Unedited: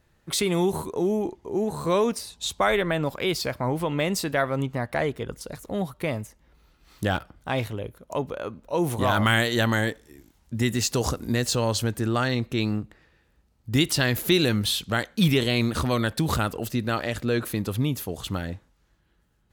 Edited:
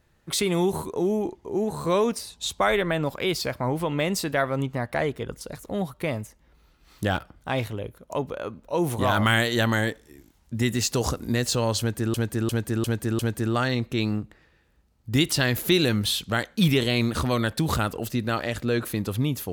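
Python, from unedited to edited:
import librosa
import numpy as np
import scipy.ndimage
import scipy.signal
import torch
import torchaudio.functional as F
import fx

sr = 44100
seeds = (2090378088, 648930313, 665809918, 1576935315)

y = fx.edit(x, sr, fx.repeat(start_s=11.79, length_s=0.35, count=5), tone=tone)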